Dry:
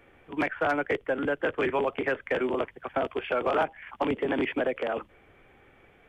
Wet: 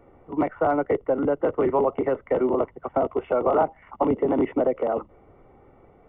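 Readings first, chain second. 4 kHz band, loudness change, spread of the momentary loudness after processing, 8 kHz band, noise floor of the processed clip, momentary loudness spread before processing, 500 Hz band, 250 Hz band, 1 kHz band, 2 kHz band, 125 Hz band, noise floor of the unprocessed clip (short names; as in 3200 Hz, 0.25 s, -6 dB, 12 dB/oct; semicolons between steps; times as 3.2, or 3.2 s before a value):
under -10 dB, +5.0 dB, 5 LU, n/a, -55 dBFS, 5 LU, +6.0 dB, +6.0 dB, +4.5 dB, -8.5 dB, +6.0 dB, -59 dBFS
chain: polynomial smoothing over 65 samples; gain +6 dB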